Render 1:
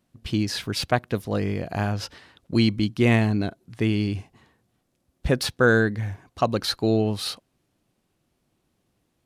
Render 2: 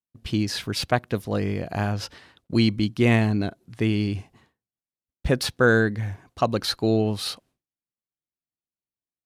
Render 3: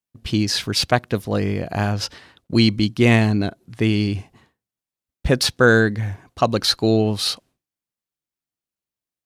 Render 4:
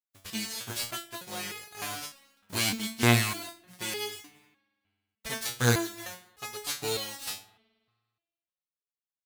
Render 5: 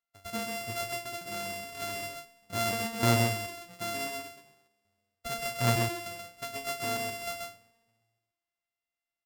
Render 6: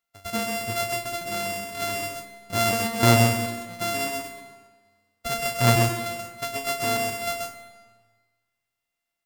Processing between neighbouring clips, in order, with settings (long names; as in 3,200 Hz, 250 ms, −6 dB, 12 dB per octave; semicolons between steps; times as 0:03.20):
downward expander −51 dBFS
dynamic equaliser 5,500 Hz, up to +5 dB, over −41 dBFS, Q 0.8; level +4 dB
spectral envelope flattened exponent 0.3; spring reverb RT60 1.6 s, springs 53 ms, chirp 60 ms, DRR 19 dB; step-sequenced resonator 3.3 Hz 96–420 Hz; level −2.5 dB
samples sorted by size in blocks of 64 samples; single-tap delay 131 ms −4.5 dB; in parallel at −1 dB: downward compressor, threshold −36 dBFS, peak gain reduction 18.5 dB; on the sum: level −4 dB
comb and all-pass reverb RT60 1.3 s, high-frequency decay 0.9×, pre-delay 70 ms, DRR 11.5 dB; level +7.5 dB